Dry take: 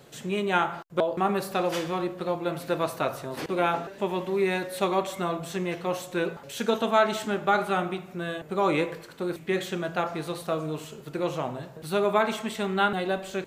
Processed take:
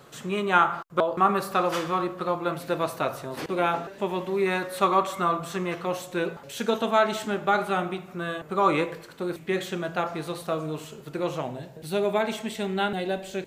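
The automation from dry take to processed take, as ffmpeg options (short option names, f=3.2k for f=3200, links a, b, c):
-af "asetnsamples=n=441:p=0,asendcmd='2.54 equalizer g 1.5;4.46 equalizer g 10.5;5.85 equalizer g 0.5;8.08 equalizer g 7.5;8.84 equalizer g 1;11.41 equalizer g -9.5',equalizer=f=1.2k:t=o:w=0.55:g=10"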